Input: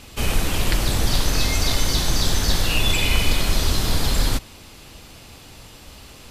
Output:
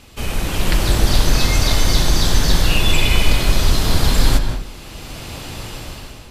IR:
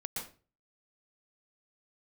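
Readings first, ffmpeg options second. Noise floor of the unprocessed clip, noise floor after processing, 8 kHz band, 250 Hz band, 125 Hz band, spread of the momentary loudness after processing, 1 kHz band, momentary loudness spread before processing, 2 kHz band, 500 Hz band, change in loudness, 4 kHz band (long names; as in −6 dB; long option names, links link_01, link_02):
−44 dBFS, −36 dBFS, +2.0 dB, +4.5 dB, +5.0 dB, 16 LU, +4.5 dB, 4 LU, +3.5 dB, +4.5 dB, +4.0 dB, +2.5 dB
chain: -filter_complex "[0:a]dynaudnorm=framelen=160:gausssize=7:maxgain=14dB,asplit=2[link_01][link_02];[1:a]atrim=start_sample=2205,asetrate=32634,aresample=44100,highshelf=frequency=5700:gain=-12[link_03];[link_02][link_03]afir=irnorm=-1:irlink=0,volume=-4.5dB[link_04];[link_01][link_04]amix=inputs=2:normalize=0,volume=-5dB"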